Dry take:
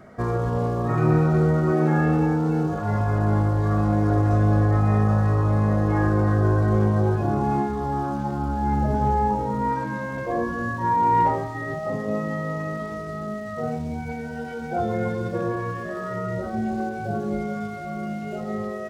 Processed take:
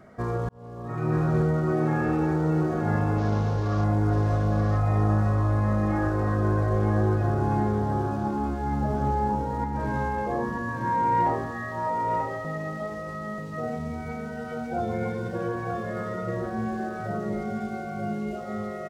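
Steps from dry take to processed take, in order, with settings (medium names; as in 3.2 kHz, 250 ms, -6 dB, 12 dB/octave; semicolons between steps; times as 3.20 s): 0.49–1.32 s: fade in; 3.18–3.84 s: CVSD coder 32 kbps; 9.64–10.09 s: compressor with a negative ratio -28 dBFS, ratio -0.5; 11.51–12.45 s: high-pass 500 Hz 24 dB/octave; delay 936 ms -4.5 dB; trim -4 dB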